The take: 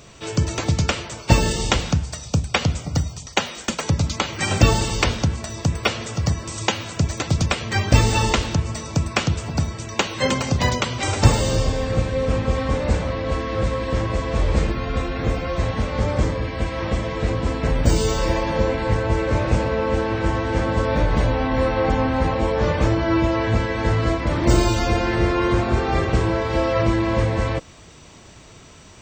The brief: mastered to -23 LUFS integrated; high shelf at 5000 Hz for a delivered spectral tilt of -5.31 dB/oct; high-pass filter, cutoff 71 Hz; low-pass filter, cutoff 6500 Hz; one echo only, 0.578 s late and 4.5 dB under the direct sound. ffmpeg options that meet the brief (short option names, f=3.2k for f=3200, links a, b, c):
-af "highpass=71,lowpass=6.5k,highshelf=f=5k:g=-5,aecho=1:1:578:0.596,volume=-1.5dB"